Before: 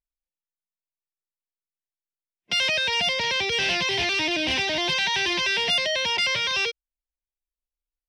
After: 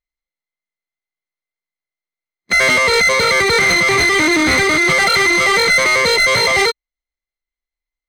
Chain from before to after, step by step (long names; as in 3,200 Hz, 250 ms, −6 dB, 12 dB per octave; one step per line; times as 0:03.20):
samples sorted by size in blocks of 16 samples
low-pass filter 7,000 Hz 12 dB per octave
formants moved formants −5 semitones
leveller curve on the samples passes 2
level +7 dB